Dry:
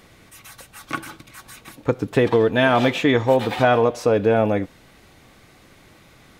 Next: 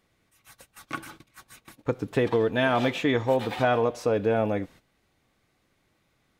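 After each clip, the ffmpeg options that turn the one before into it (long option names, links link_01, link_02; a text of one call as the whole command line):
ffmpeg -i in.wav -af "agate=range=-13dB:threshold=-41dB:ratio=16:detection=peak,volume=-6.5dB" out.wav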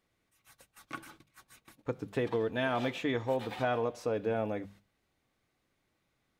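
ffmpeg -i in.wav -af "bandreject=frequency=50:width_type=h:width=6,bandreject=frequency=100:width_type=h:width=6,bandreject=frequency=150:width_type=h:width=6,bandreject=frequency=200:width_type=h:width=6,volume=-8dB" out.wav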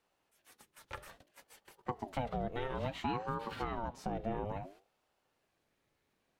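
ffmpeg -i in.wav -filter_complex "[0:a]acrossover=split=350[link_01][link_02];[link_02]acompressor=threshold=-39dB:ratio=6[link_03];[link_01][link_03]amix=inputs=2:normalize=0,aeval=exprs='val(0)*sin(2*PI*460*n/s+460*0.5/0.59*sin(2*PI*0.59*n/s))':channel_layout=same,volume=1.5dB" out.wav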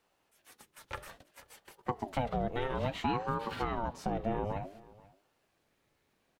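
ffmpeg -i in.wav -af "aecho=1:1:483:0.0794,volume=4dB" out.wav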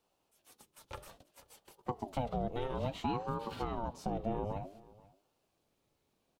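ffmpeg -i in.wav -af "equalizer=frequency=1800:width=1.6:gain=-10,volume=-2dB" out.wav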